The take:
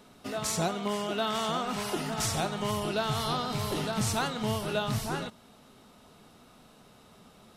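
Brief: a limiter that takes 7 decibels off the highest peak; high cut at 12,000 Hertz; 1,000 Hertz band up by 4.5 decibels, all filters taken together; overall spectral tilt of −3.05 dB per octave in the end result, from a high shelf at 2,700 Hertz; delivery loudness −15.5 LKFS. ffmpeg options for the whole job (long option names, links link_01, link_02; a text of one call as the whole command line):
ffmpeg -i in.wav -af "lowpass=12000,equalizer=frequency=1000:width_type=o:gain=4.5,highshelf=frequency=2700:gain=8,volume=13.5dB,alimiter=limit=-5.5dB:level=0:latency=1" out.wav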